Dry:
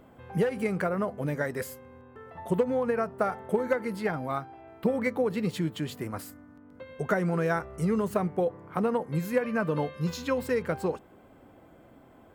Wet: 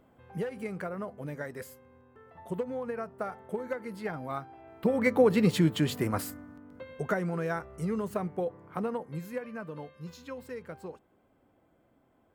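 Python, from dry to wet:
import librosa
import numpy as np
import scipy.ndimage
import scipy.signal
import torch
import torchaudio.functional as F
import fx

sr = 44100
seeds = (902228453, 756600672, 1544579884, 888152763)

y = fx.gain(x, sr, db=fx.line((3.75, -8.0), (4.85, -1.0), (5.22, 5.5), (6.27, 5.5), (7.32, -5.0), (8.78, -5.0), (9.73, -13.0)))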